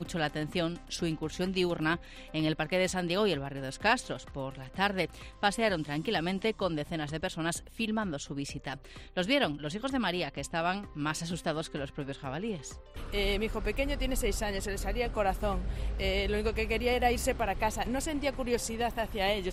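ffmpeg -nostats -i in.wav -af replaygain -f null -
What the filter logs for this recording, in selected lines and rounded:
track_gain = +11.5 dB
track_peak = 0.159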